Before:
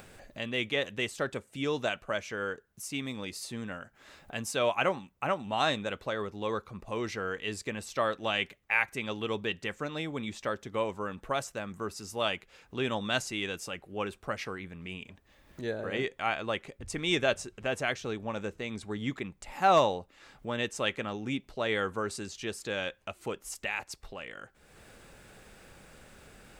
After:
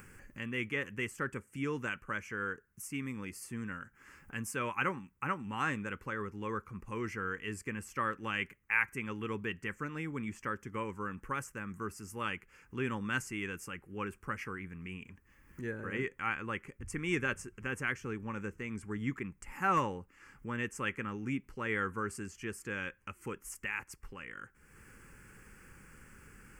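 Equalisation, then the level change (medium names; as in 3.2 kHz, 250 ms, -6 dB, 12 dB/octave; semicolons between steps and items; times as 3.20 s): dynamic bell 5.2 kHz, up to -4 dB, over -49 dBFS, Q 0.9; static phaser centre 1.6 kHz, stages 4; 0.0 dB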